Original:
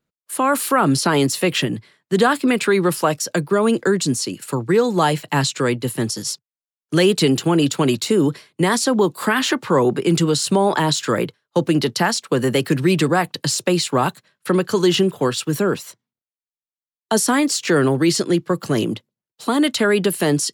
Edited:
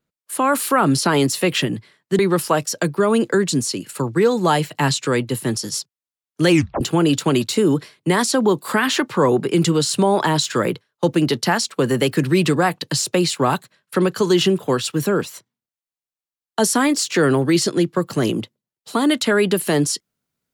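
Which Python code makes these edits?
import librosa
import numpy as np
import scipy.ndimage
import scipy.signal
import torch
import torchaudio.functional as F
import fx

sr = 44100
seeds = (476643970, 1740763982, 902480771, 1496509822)

y = fx.edit(x, sr, fx.cut(start_s=2.19, length_s=0.53),
    fx.tape_stop(start_s=7.03, length_s=0.31), tone=tone)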